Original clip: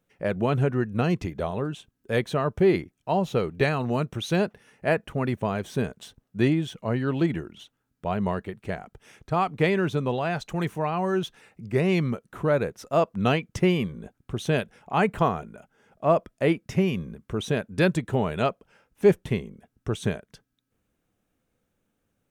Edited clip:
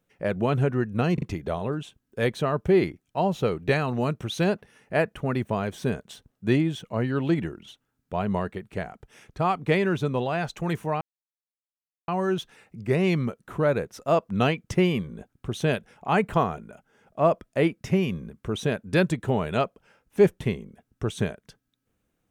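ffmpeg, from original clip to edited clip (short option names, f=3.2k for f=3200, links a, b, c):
-filter_complex "[0:a]asplit=4[a][b][c][d];[a]atrim=end=1.182[e];[b]atrim=start=1.138:end=1.182[f];[c]atrim=start=1.138:end=10.93,asetpts=PTS-STARTPTS,afade=t=out:st=9.788:d=0.004:c=hsin,apad=pad_dur=1.07[g];[d]atrim=start=10.93,asetpts=PTS-STARTPTS,afade=t=in:d=0.004:c=hsin[h];[e][f]acrossfade=d=0.004:c1=hsin:c2=hsin[i];[g][h]concat=n=2:v=0:a=1[j];[i][j]acrossfade=d=0.004:c1=hsin:c2=hsin"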